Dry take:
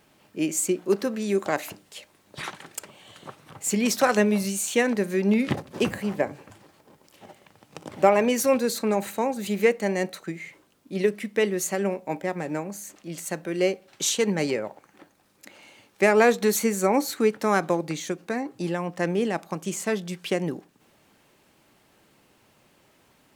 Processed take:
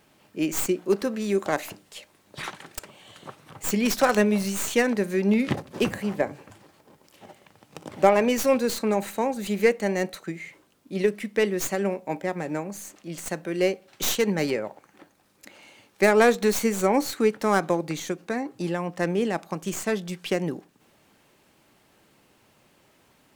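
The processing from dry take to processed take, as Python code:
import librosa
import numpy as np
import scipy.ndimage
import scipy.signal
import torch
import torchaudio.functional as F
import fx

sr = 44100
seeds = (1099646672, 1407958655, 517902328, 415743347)

y = fx.tracing_dist(x, sr, depth_ms=0.097)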